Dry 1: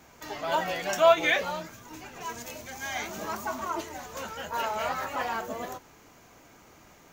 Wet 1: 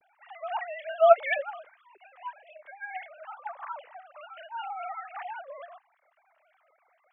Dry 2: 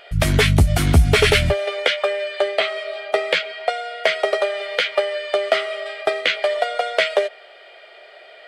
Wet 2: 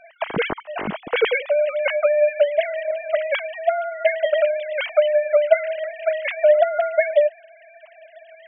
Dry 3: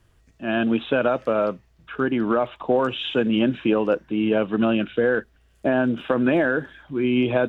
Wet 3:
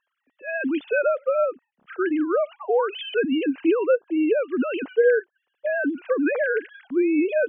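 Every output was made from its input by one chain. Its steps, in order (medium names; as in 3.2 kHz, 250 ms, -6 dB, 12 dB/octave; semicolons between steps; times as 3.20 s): formants replaced by sine waves; trim -1 dB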